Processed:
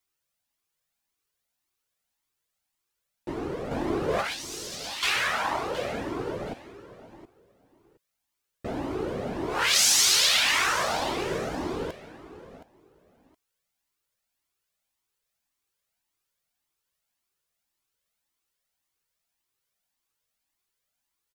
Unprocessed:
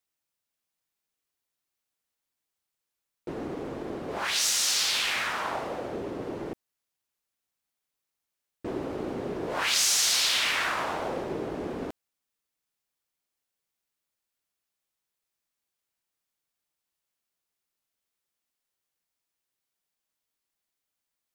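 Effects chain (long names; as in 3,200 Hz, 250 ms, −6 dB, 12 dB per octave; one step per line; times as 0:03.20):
0:03.71–0:05.03: compressor whose output falls as the input rises −33 dBFS, ratio −0.5
repeating echo 719 ms, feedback 19%, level −15 dB
flanger whose copies keep moving one way rising 1.8 Hz
level +7.5 dB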